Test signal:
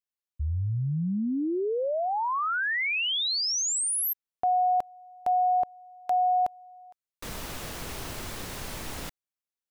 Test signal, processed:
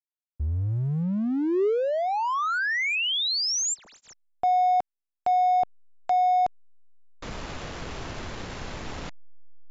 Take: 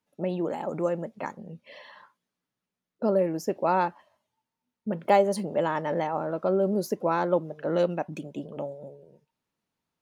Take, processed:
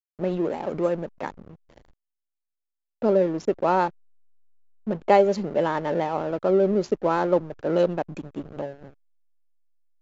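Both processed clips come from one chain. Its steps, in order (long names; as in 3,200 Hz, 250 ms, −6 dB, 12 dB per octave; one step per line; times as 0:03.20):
dynamic equaliser 400 Hz, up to +4 dB, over −42 dBFS, Q 3.3
slack as between gear wheels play −34.5 dBFS
linear-phase brick-wall low-pass 7,500 Hz
level +2.5 dB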